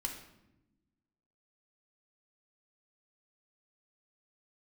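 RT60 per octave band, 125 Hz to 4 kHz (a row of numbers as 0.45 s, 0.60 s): 1.6 s, 1.7 s, 1.1 s, 0.80 s, 0.75 s, 0.60 s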